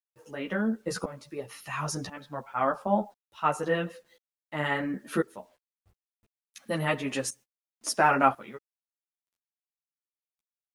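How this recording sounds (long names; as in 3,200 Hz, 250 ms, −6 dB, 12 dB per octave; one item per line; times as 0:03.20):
tremolo saw up 0.96 Hz, depth 90%
a quantiser's noise floor 12 bits, dither none
a shimmering, thickened sound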